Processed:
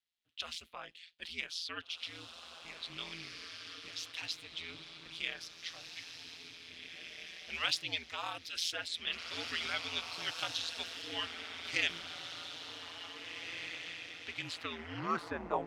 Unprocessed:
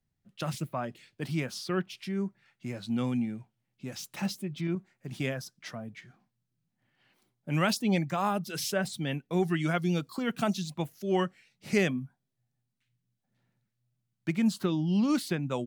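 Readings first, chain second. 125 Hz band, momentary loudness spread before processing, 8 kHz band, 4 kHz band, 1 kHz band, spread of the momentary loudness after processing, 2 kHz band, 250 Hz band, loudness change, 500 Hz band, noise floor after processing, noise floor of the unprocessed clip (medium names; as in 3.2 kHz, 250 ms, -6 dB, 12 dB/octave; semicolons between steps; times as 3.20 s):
-22.0 dB, 14 LU, -5.0 dB, +4.5 dB, -6.5 dB, 12 LU, -1.0 dB, -21.0 dB, -8.0 dB, -13.5 dB, -56 dBFS, -82 dBFS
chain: echo that smears into a reverb 1901 ms, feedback 41%, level -5 dB; band-pass sweep 3.4 kHz -> 850 Hz, 14.37–15.46 s; ring modulator 84 Hz; trim +9 dB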